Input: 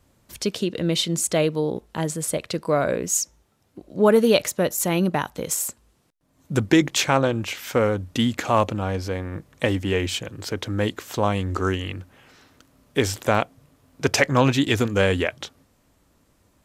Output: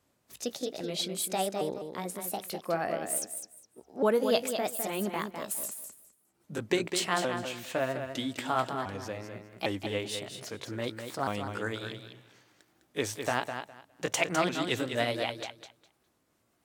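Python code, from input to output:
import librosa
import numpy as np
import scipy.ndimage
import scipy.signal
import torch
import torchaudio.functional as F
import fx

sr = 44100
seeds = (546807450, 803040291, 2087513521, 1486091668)

y = fx.pitch_ramps(x, sr, semitones=5.0, every_ms=805)
y = fx.highpass(y, sr, hz=230.0, slope=6)
y = fx.echo_feedback(y, sr, ms=205, feedback_pct=19, wet_db=-7.5)
y = y * 10.0 ** (-8.0 / 20.0)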